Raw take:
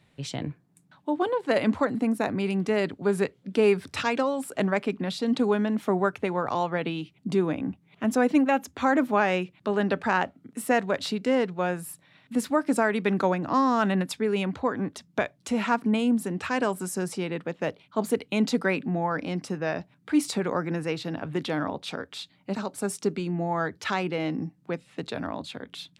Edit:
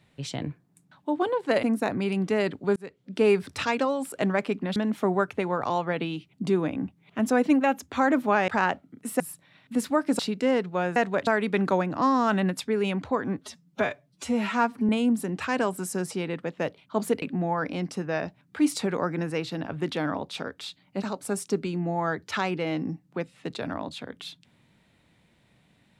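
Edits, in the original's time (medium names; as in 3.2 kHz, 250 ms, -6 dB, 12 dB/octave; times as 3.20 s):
1.63–2.01 s: delete
3.14–3.61 s: fade in
5.14–5.61 s: delete
9.33–10.00 s: delete
10.72–11.03 s: swap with 11.80–12.79 s
14.91–15.91 s: stretch 1.5×
18.24–18.75 s: delete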